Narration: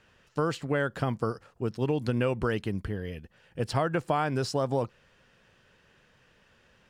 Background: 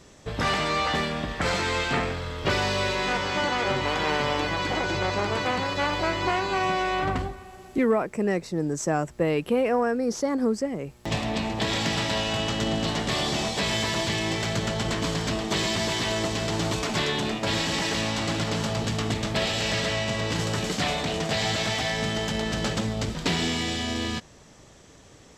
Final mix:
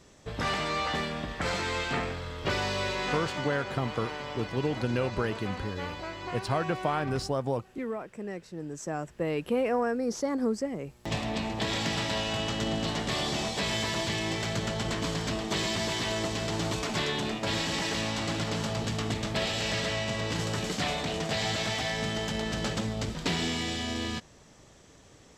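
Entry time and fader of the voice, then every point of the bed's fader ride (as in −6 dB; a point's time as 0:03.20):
2.75 s, −2.0 dB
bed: 0:03.13 −5 dB
0:03.60 −12.5 dB
0:08.46 −12.5 dB
0:09.57 −4 dB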